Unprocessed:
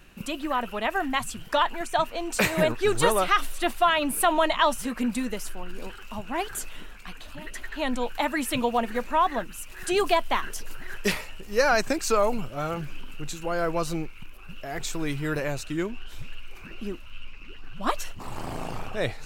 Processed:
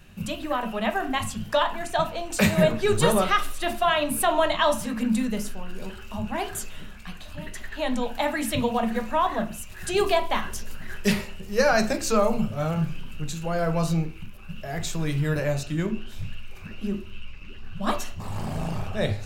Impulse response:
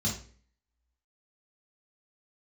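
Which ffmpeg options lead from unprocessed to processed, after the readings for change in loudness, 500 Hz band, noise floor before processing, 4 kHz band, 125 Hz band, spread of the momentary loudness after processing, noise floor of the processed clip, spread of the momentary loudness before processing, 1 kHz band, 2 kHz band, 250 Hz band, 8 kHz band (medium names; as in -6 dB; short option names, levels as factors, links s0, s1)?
+1.0 dB, +1.5 dB, -42 dBFS, +0.5 dB, +8.5 dB, 18 LU, -40 dBFS, 19 LU, -1.0 dB, -0.5 dB, +3.5 dB, +0.5 dB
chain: -filter_complex "[0:a]asplit=2[s0][s1];[1:a]atrim=start_sample=2205,lowpass=4600[s2];[s1][s2]afir=irnorm=-1:irlink=0,volume=0.266[s3];[s0][s3]amix=inputs=2:normalize=0"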